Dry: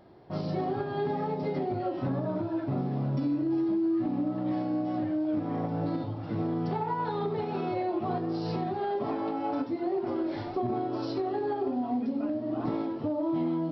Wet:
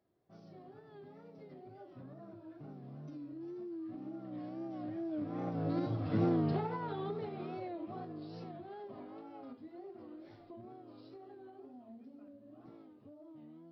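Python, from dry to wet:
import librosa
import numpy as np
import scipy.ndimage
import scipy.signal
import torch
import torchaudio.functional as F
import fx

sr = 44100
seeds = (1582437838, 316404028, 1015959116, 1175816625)

y = fx.doppler_pass(x, sr, speed_mps=10, closest_m=3.4, pass_at_s=6.18)
y = fx.notch(y, sr, hz=900.0, q=5.7)
y = fx.wow_flutter(y, sr, seeds[0], rate_hz=2.1, depth_cents=93.0)
y = F.gain(torch.from_numpy(y), 1.0).numpy()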